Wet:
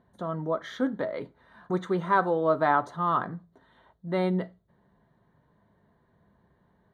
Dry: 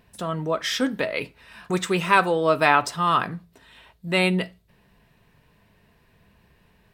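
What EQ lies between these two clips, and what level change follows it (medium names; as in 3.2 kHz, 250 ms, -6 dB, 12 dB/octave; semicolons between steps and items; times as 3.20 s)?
boxcar filter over 17 samples; high-pass 140 Hz 6 dB/octave; band-stop 450 Hz, Q 12; -2.0 dB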